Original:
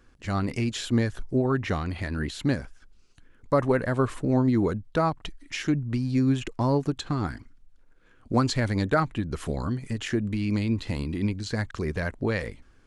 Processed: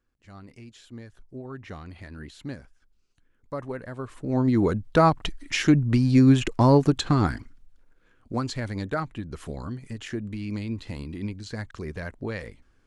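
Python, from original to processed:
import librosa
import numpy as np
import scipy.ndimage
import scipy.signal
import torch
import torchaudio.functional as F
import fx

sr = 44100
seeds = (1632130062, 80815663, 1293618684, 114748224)

y = fx.gain(x, sr, db=fx.line((1.0, -18.5), (1.84, -11.0), (4.09, -11.0), (4.41, 0.0), (5.07, 6.5), (7.21, 6.5), (8.32, -5.5)))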